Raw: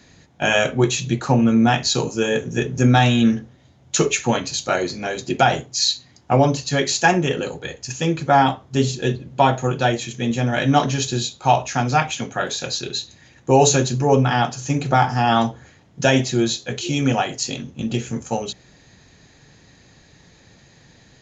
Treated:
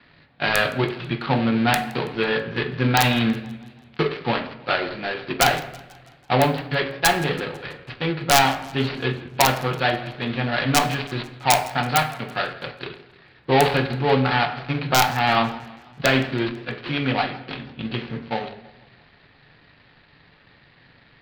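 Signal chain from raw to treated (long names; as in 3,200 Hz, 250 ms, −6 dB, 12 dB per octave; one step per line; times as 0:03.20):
gap after every zero crossing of 0.19 ms
elliptic low-pass filter 4,500 Hz, stop band 40 dB
parametric band 2,000 Hz +8 dB 2.6 octaves
wrap-around overflow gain 0 dB
hum removal 91.43 Hz, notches 27
convolution reverb RT60 0.75 s, pre-delay 7 ms, DRR 9.5 dB
feedback echo with a swinging delay time 164 ms, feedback 55%, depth 156 cents, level −21 dB
level −4.5 dB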